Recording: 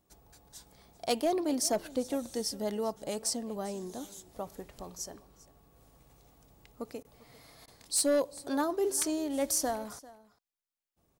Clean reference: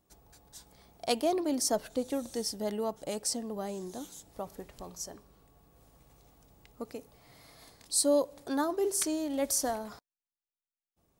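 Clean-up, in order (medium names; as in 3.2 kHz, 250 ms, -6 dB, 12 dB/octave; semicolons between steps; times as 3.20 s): clip repair -21.5 dBFS; interpolate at 7.03/7.66 s, 17 ms; inverse comb 396 ms -20 dB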